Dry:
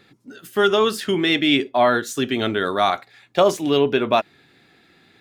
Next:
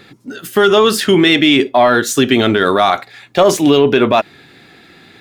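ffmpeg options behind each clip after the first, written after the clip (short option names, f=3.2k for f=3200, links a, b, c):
-filter_complex "[0:a]asplit=2[a][b];[b]acontrast=38,volume=2.5dB[c];[a][c]amix=inputs=2:normalize=0,alimiter=level_in=2dB:limit=-1dB:release=50:level=0:latency=1,volume=-1dB"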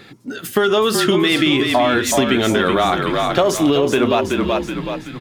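-filter_complex "[0:a]asplit=2[a][b];[b]asplit=5[c][d][e][f][g];[c]adelay=376,afreqshift=-37,volume=-7dB[h];[d]adelay=752,afreqshift=-74,volume=-13.7dB[i];[e]adelay=1128,afreqshift=-111,volume=-20.5dB[j];[f]adelay=1504,afreqshift=-148,volume=-27.2dB[k];[g]adelay=1880,afreqshift=-185,volume=-34dB[l];[h][i][j][k][l]amix=inputs=5:normalize=0[m];[a][m]amix=inputs=2:normalize=0,acompressor=threshold=-12dB:ratio=6"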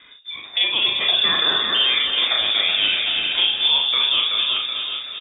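-filter_complex "[0:a]asplit=2[a][b];[b]aecho=0:1:39|67:0.668|0.355[c];[a][c]amix=inputs=2:normalize=0,lowpass=f=3.2k:t=q:w=0.5098,lowpass=f=3.2k:t=q:w=0.6013,lowpass=f=3.2k:t=q:w=0.9,lowpass=f=3.2k:t=q:w=2.563,afreqshift=-3800,asplit=2[d][e];[e]aecho=0:1:253:0.447[f];[d][f]amix=inputs=2:normalize=0,volume=-6dB"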